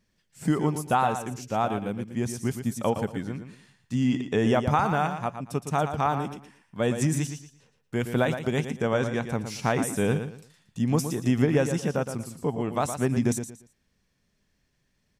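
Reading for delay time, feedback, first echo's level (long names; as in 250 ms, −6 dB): 116 ms, 26%, −9.0 dB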